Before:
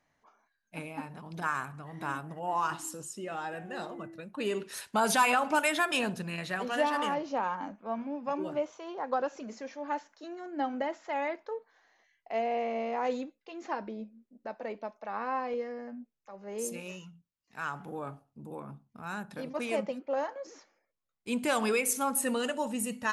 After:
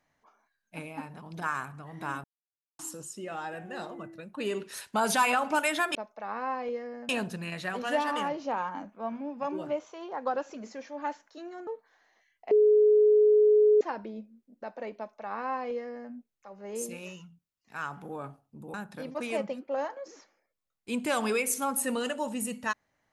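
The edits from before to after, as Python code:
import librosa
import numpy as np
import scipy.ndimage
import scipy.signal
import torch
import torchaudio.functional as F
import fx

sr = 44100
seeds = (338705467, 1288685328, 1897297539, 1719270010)

y = fx.edit(x, sr, fx.silence(start_s=2.24, length_s=0.55),
    fx.cut(start_s=10.53, length_s=0.97),
    fx.bleep(start_s=12.34, length_s=1.3, hz=423.0, db=-17.0),
    fx.duplicate(start_s=14.8, length_s=1.14, to_s=5.95),
    fx.cut(start_s=18.57, length_s=0.56), tone=tone)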